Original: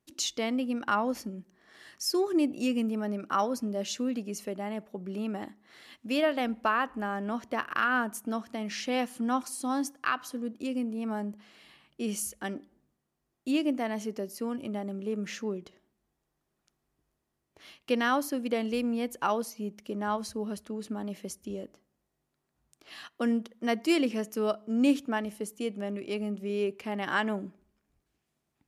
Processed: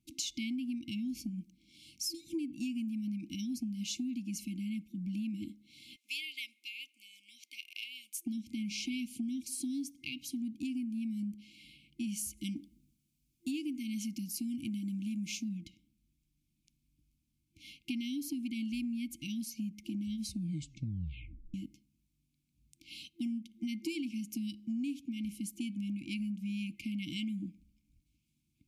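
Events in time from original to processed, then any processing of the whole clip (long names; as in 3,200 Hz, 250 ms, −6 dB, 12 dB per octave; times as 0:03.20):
0:05.96–0:08.26: Bessel high-pass filter 1,200 Hz, order 4
0:12.37–0:15.49: high-shelf EQ 3,600 Hz +7 dB
0:20.25: tape stop 1.29 s
whole clip: brick-wall band-stop 340–2,100 Hz; low-shelf EQ 180 Hz +7 dB; downward compressor 10 to 1, threshold −34 dBFS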